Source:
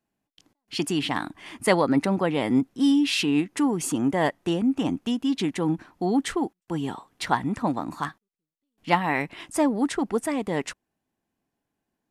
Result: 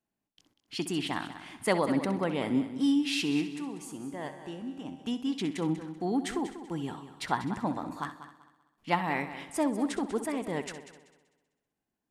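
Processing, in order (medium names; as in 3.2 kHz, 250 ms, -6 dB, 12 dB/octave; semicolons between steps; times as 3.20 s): 3.49–5.04 s: feedback comb 71 Hz, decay 1.8 s, harmonics all, mix 70%; multi-head delay 64 ms, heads first and third, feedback 45%, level -13 dB; trim -6.5 dB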